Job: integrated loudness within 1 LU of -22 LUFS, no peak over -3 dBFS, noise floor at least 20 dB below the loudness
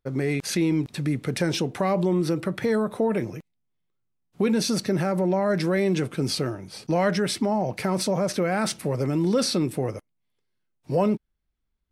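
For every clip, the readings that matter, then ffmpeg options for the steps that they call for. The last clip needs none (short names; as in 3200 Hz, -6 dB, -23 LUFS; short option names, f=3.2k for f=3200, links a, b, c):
loudness -25.0 LUFS; peak -10.5 dBFS; loudness target -22.0 LUFS
-> -af "volume=3dB"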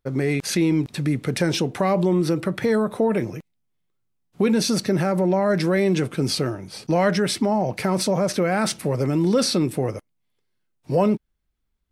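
loudness -22.0 LUFS; peak -7.5 dBFS; noise floor -73 dBFS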